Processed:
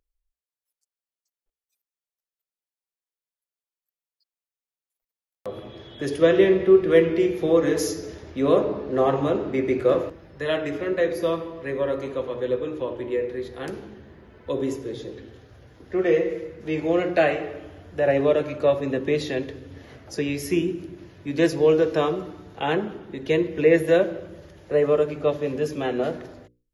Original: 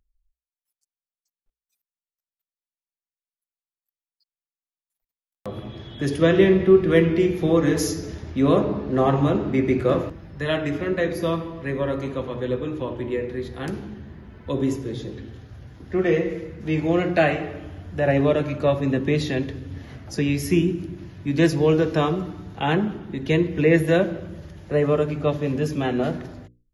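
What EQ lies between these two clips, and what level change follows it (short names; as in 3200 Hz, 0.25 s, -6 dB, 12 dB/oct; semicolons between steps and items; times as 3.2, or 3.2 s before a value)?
EQ curve 200 Hz 0 dB, 490 Hz +12 dB, 760 Hz +7 dB; -9.0 dB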